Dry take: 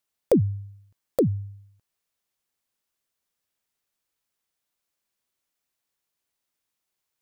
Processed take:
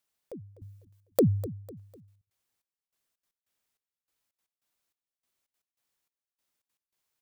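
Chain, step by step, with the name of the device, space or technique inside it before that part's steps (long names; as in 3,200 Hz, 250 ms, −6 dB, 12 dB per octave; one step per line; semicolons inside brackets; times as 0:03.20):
0:00.59–0:01.23: spectral tilt +1.5 dB per octave
trance gate with a delay (gate pattern "xxxx....xxx.x.." 195 BPM −24 dB; repeating echo 250 ms, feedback 38%, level −16 dB)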